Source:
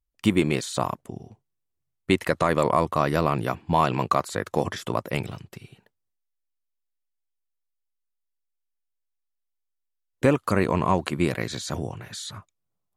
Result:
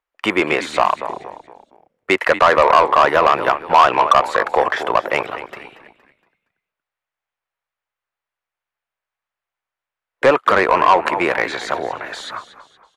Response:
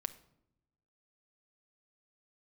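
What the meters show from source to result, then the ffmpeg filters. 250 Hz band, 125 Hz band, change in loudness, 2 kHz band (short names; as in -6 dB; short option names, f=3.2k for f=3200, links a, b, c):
-1.0 dB, -9.0 dB, +9.5 dB, +13.0 dB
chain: -filter_complex "[0:a]acrossover=split=410 2400:gain=0.126 1 0.112[a][b][c];[a][b][c]amix=inputs=3:normalize=0,asplit=5[d][e][f][g][h];[e]adelay=233,afreqshift=-73,volume=-14.5dB[i];[f]adelay=466,afreqshift=-146,volume=-22.5dB[j];[g]adelay=699,afreqshift=-219,volume=-30.4dB[k];[h]adelay=932,afreqshift=-292,volume=-38.4dB[l];[d][i][j][k][l]amix=inputs=5:normalize=0,asplit=2[m][n];[n]highpass=f=720:p=1,volume=17dB,asoftclip=type=tanh:threshold=-8.5dB[o];[m][o]amix=inputs=2:normalize=0,lowpass=f=6.3k:p=1,volume=-6dB,volume=7dB"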